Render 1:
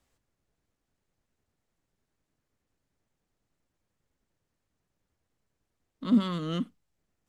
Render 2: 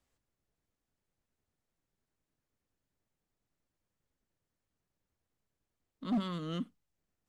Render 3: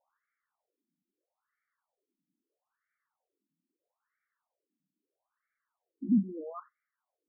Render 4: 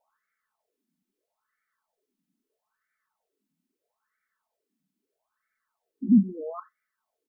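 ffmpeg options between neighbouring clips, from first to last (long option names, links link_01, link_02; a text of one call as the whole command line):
ffmpeg -i in.wav -af "asoftclip=type=hard:threshold=-21dB,volume=-6dB" out.wav
ffmpeg -i in.wav -filter_complex "[0:a]acrossover=split=2600[link_01][link_02];[link_01]crystalizer=i=7.5:c=0[link_03];[link_03][link_02]amix=inputs=2:normalize=0,afftfilt=real='re*between(b*sr/1024,230*pow(1700/230,0.5+0.5*sin(2*PI*0.77*pts/sr))/1.41,230*pow(1700/230,0.5+0.5*sin(2*PI*0.77*pts/sr))*1.41)':imag='im*between(b*sr/1024,230*pow(1700/230,0.5+0.5*sin(2*PI*0.77*pts/sr))/1.41,230*pow(1700/230,0.5+0.5*sin(2*PI*0.77*pts/sr))*1.41)':win_size=1024:overlap=0.75,volume=6.5dB" out.wav
ffmpeg -i in.wav -af "aecho=1:1:4.6:0.46,volume=4.5dB" out.wav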